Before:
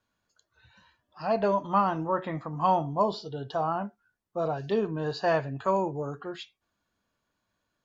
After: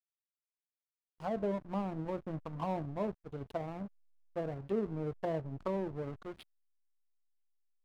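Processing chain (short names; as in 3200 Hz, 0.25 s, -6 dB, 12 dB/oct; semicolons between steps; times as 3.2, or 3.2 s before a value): treble ducked by the level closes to 500 Hz, closed at -25.5 dBFS; backlash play -32.5 dBFS; gain -4.5 dB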